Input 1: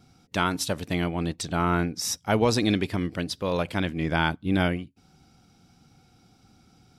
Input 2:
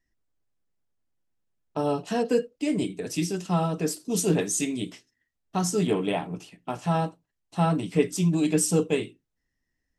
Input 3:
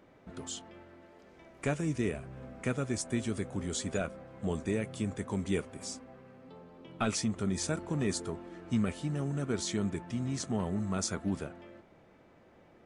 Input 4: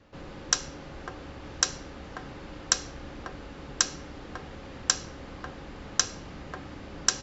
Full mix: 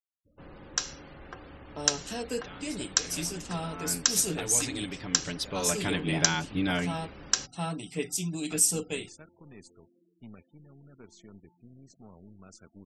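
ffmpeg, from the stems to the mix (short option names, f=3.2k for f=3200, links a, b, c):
-filter_complex "[0:a]aecho=1:1:6.9:0.81,alimiter=limit=-18dB:level=0:latency=1:release=219,adelay=2100,volume=-2.5dB,afade=t=in:st=3.64:d=0.38:silence=0.316228,afade=t=in:st=5.19:d=0.7:silence=0.398107[a];[1:a]highshelf=f=4.2k:g=10.5,volume=-11dB[b];[2:a]highpass=64,aeval=exprs='0.15*(cos(1*acos(clip(val(0)/0.15,-1,1)))-cos(1*PI/2))+0.015*(cos(3*acos(clip(val(0)/0.15,-1,1)))-cos(3*PI/2))+0.00668*(cos(8*acos(clip(val(0)/0.15,-1,1)))-cos(8*PI/2))':c=same,adelay=1500,volume=-16.5dB[c];[3:a]adelay=250,volume=-5.5dB[d];[a][b][c][d]amix=inputs=4:normalize=0,afftfilt=real='re*gte(hypot(re,im),0.00178)':imag='im*gte(hypot(re,im),0.00178)':win_size=1024:overlap=0.75,adynamicequalizer=threshold=0.00447:dfrequency=1600:dqfactor=0.7:tfrequency=1600:tqfactor=0.7:attack=5:release=100:ratio=0.375:range=3:mode=boostabove:tftype=highshelf"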